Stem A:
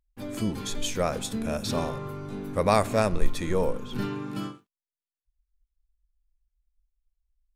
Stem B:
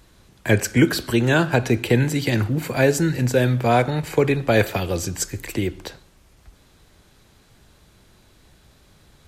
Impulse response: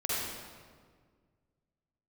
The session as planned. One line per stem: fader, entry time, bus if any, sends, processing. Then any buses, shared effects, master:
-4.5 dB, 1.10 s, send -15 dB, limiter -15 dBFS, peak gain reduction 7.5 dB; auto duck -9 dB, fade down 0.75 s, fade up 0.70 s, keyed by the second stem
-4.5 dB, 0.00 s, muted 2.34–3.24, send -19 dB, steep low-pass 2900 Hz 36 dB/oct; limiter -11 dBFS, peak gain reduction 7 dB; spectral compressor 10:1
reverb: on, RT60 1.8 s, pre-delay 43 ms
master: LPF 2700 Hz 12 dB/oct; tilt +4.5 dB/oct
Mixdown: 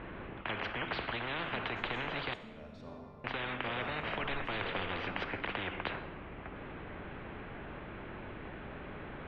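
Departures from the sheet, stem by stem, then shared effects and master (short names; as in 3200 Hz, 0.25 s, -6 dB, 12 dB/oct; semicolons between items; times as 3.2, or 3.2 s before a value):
stem A -4.5 dB -> -16.0 dB; master: missing tilt +4.5 dB/oct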